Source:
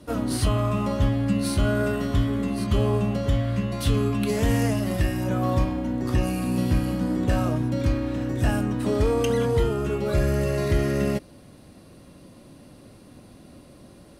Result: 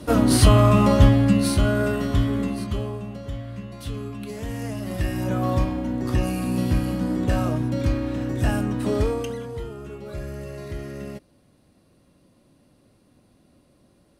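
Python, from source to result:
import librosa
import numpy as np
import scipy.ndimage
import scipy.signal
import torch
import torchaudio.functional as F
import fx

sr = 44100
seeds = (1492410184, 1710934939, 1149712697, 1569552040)

y = fx.gain(x, sr, db=fx.line((0.99, 8.5), (1.71, 1.5), (2.43, 1.5), (2.97, -9.5), (4.54, -9.5), (5.19, 0.5), (9.0, 0.5), (9.43, -11.0)))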